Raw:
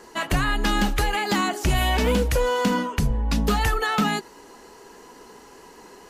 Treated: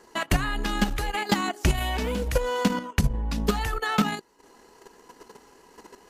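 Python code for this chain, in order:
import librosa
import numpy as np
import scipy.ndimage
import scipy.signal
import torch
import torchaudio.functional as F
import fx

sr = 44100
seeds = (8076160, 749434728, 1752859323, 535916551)

y = fx.transient(x, sr, attack_db=5, sustain_db=-11)
y = fx.level_steps(y, sr, step_db=9)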